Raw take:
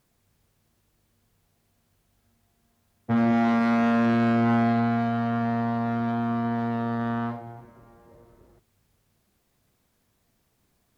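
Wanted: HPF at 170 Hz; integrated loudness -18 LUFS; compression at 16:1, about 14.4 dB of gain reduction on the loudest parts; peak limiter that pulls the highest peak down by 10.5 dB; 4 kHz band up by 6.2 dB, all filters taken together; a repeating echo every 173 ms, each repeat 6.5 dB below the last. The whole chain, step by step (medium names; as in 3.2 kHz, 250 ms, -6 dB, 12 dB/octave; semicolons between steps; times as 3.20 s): high-pass 170 Hz; peaking EQ 4 kHz +8 dB; compression 16:1, threshold -34 dBFS; peak limiter -34 dBFS; feedback delay 173 ms, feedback 47%, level -6.5 dB; trim +25 dB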